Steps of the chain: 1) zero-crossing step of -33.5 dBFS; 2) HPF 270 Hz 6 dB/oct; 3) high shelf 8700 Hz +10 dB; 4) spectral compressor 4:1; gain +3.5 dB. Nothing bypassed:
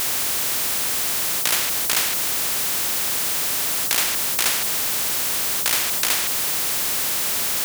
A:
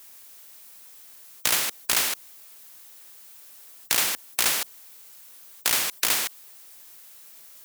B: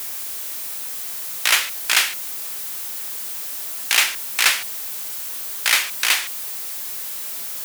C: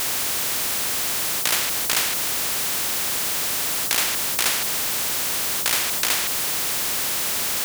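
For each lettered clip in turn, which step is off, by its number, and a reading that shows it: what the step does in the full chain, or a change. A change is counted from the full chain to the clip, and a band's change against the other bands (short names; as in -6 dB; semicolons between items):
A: 1, distortion -10 dB; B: 4, 250 Hz band -11.5 dB; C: 3, loudness change -1.5 LU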